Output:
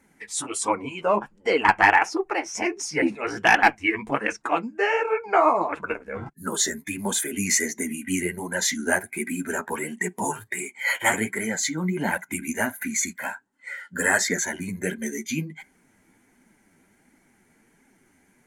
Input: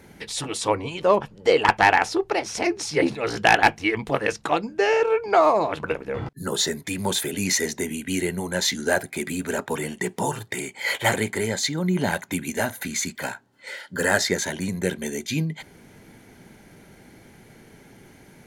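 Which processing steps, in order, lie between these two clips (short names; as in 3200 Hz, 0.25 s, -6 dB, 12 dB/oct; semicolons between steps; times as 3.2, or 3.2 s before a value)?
graphic EQ 125/250/500/1000/2000/4000/8000 Hz -7/+6/-4/+4/+5/-6/+10 dB; spectral noise reduction 11 dB; flange 1.4 Hz, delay 3.2 ms, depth 9.6 ms, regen +8%; overloaded stage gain 4.5 dB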